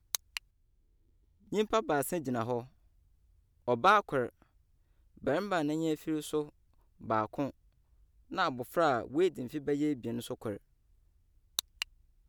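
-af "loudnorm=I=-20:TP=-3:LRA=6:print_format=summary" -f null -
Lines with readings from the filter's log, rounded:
Input Integrated:    -33.5 LUFS
Input True Peak:     -11.7 dBTP
Input LRA:             5.9 LU
Input Threshold:     -44.0 LUFS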